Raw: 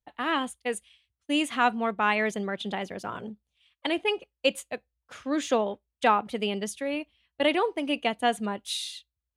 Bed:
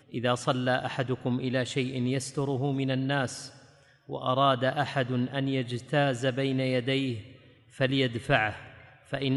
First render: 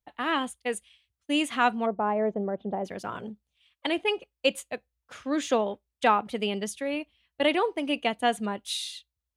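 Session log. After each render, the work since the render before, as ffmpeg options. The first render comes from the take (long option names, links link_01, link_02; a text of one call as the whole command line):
ffmpeg -i in.wav -filter_complex "[0:a]asplit=3[link_01][link_02][link_03];[link_01]afade=type=out:start_time=1.85:duration=0.02[link_04];[link_02]lowpass=frequency=680:width_type=q:width=1.5,afade=type=in:start_time=1.85:duration=0.02,afade=type=out:start_time=2.84:duration=0.02[link_05];[link_03]afade=type=in:start_time=2.84:duration=0.02[link_06];[link_04][link_05][link_06]amix=inputs=3:normalize=0" out.wav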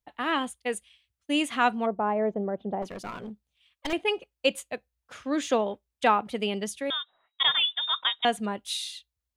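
ffmpeg -i in.wav -filter_complex "[0:a]asettb=1/sr,asplit=3[link_01][link_02][link_03];[link_01]atrim=end=2.824[link_04];[link_02]atrim=start=2.82:end=3.93,asetpts=PTS-STARTPTS,afade=type=in:duration=0.004:curve=qsin,afade=type=out:start_time=1.106:duration=0.004:curve=qsin,aeval=exprs='clip(val(0),-1,0.0168)':channel_layout=same[link_05];[link_03]atrim=start=3.926[link_06];[link_04][link_05]acrossfade=duration=0.004:curve1=hsin:curve2=qsin[link_07];[link_07][link_06]acrossfade=duration=0.004:curve1=qsin:curve2=hsin,asettb=1/sr,asplit=3[link_08][link_09][link_10];[link_08]atrim=end=6.904[link_11];[link_09]atrim=start=6.9:end=8.25,asetpts=PTS-STARTPTS,afade=type=in:duration=0.004:curve=qsin,afade=type=out:start_time=1.346:duration=0.004:curve=qsin,lowpass=frequency=3300:width_type=q:width=0.5098,lowpass=frequency=3300:width_type=q:width=0.6013,lowpass=frequency=3300:width_type=q:width=0.9,lowpass=frequency=3300:width_type=q:width=2.563,afreqshift=-3900[link_12];[link_10]atrim=start=8.246[link_13];[link_11][link_12]acrossfade=duration=0.004:curve1=hsin:curve2=qsin[link_14];[link_14][link_13]acrossfade=duration=0.004:curve1=qsin:curve2=hsin" out.wav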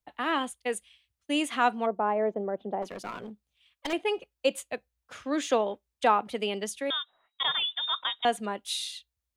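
ffmpeg -i in.wav -filter_complex "[0:a]acrossover=split=230|1500|4200[link_01][link_02][link_03][link_04];[link_01]acompressor=threshold=-50dB:ratio=6[link_05];[link_03]alimiter=level_in=3.5dB:limit=-24dB:level=0:latency=1:release=77,volume=-3.5dB[link_06];[link_05][link_02][link_06][link_04]amix=inputs=4:normalize=0" out.wav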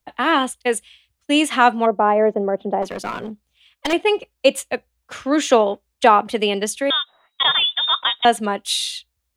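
ffmpeg -i in.wav -af "volume=11dB,alimiter=limit=-1dB:level=0:latency=1" out.wav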